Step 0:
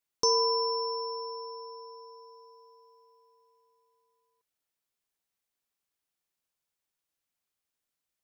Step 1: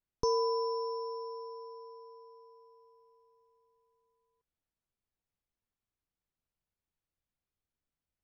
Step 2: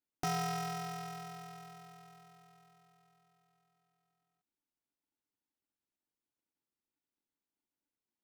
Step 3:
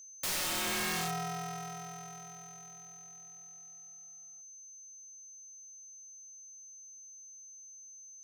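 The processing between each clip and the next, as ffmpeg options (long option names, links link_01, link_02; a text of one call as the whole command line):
ffmpeg -i in.wav -af "aemphasis=mode=reproduction:type=riaa,volume=-4.5dB" out.wav
ffmpeg -i in.wav -af "aeval=exprs='val(0)*sgn(sin(2*PI*290*n/s))':channel_layout=same,volume=-5.5dB" out.wav
ffmpeg -i in.wav -af "aeval=exprs='(mod(79.4*val(0)+1,2)-1)/79.4':channel_layout=same,aeval=exprs='val(0)+0.00126*sin(2*PI*6200*n/s)':channel_layout=same,volume=9dB" out.wav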